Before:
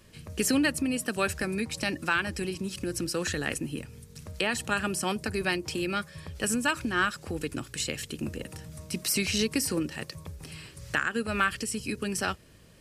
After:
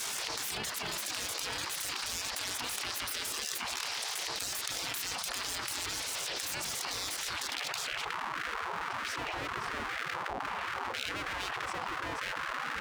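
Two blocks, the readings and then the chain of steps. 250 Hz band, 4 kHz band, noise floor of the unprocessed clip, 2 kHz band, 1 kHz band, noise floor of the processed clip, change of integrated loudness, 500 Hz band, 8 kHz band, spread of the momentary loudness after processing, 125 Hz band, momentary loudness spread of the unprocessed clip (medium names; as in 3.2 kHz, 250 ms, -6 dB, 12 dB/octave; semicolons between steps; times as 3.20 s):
-19.0 dB, +0.5 dB, -52 dBFS, -5.5 dB, -2.0 dB, -39 dBFS, -5.0 dB, -11.5 dB, -2.0 dB, 2 LU, -14.0 dB, 14 LU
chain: low-pass sweep 4.6 kHz -> 510 Hz, 7.28–8.23 s; full-wave rectifier; transient shaper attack -8 dB, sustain +3 dB; spectral gate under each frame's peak -30 dB weak; level flattener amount 100%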